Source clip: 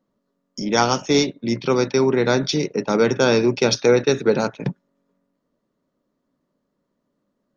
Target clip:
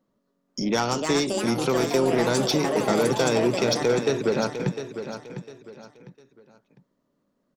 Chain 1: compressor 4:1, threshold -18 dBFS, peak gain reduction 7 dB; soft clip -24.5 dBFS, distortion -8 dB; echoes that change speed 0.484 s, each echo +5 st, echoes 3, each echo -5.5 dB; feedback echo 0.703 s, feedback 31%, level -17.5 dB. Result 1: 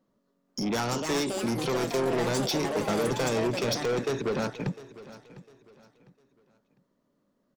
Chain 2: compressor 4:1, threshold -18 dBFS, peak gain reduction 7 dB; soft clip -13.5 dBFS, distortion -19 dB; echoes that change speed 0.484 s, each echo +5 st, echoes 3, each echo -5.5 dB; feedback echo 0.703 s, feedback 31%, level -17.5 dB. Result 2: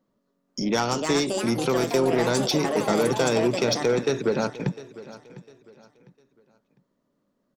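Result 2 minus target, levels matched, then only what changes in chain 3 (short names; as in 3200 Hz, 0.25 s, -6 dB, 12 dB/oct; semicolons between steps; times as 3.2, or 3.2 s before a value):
echo-to-direct -7.5 dB
change: feedback echo 0.703 s, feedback 31%, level -10 dB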